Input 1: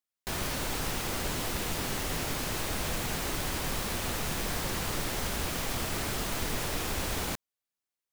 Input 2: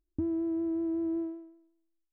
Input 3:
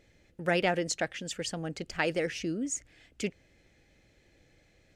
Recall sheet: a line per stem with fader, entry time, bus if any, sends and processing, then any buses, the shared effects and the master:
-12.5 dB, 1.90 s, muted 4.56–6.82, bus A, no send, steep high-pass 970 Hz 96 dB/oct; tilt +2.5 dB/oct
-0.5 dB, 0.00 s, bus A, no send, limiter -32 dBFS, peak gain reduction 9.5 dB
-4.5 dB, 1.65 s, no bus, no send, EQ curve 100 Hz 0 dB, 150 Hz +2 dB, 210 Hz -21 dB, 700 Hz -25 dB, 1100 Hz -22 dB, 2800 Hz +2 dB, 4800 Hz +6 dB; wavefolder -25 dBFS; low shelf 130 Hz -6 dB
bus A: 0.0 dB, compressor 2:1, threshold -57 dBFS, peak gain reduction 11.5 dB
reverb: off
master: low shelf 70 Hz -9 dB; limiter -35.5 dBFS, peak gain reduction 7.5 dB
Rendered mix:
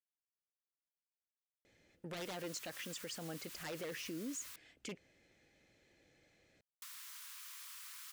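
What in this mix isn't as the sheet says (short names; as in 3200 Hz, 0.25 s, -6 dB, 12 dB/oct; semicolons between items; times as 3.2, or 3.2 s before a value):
stem 2: muted; stem 3: missing EQ curve 100 Hz 0 dB, 150 Hz +2 dB, 210 Hz -21 dB, 700 Hz -25 dB, 1100 Hz -22 dB, 2800 Hz +2 dB, 4800 Hz +6 dB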